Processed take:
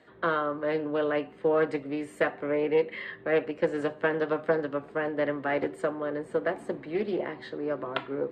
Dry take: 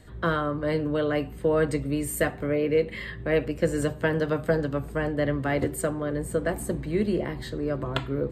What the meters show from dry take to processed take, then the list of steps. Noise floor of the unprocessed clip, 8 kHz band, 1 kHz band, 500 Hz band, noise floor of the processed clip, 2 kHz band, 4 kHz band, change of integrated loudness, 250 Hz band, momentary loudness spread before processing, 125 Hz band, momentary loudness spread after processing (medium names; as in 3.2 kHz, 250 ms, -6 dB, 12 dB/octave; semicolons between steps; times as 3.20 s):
-40 dBFS, under -20 dB, +0.5 dB, -1.0 dB, -50 dBFS, -1.0 dB, -4.5 dB, -2.5 dB, -5.0 dB, 5 LU, -13.5 dB, 7 LU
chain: band-pass 350–2900 Hz; loudspeaker Doppler distortion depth 0.15 ms